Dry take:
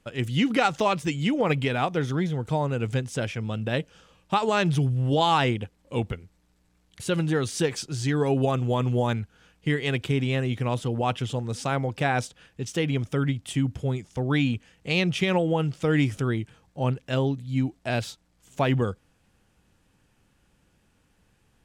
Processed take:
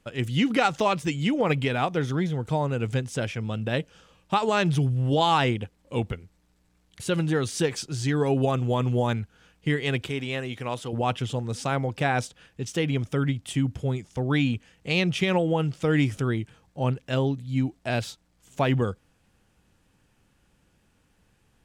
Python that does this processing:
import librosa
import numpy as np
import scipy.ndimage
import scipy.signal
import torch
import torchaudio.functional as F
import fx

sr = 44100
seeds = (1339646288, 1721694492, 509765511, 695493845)

y = fx.low_shelf(x, sr, hz=270.0, db=-11.5, at=(10.09, 10.93))